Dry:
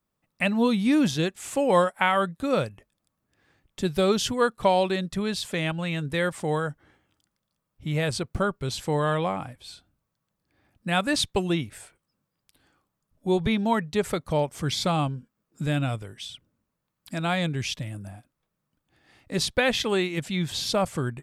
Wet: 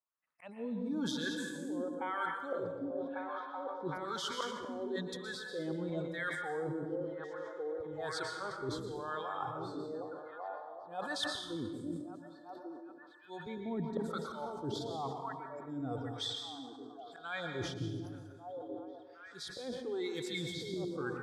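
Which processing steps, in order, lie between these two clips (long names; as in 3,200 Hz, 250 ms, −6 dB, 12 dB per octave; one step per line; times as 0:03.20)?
noise reduction from a noise print of the clip's start 22 dB
volume swells 587 ms
echo through a band-pass that steps 382 ms, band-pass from 210 Hz, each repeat 0.7 octaves, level −8.5 dB
auto-filter band-pass sine 1 Hz 310–1,700 Hz
dynamic equaliser 1,300 Hz, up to −4 dB, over −51 dBFS, Q 1.2
reversed playback
downward compressor 10 to 1, threshold −49 dBFS, peak gain reduction 22.5 dB
reversed playback
high-shelf EQ 5,600 Hz +7.5 dB
dense smooth reverb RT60 1.1 s, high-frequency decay 0.85×, pre-delay 105 ms, DRR 3.5 dB
level that may fall only so fast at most 55 dB per second
level +12.5 dB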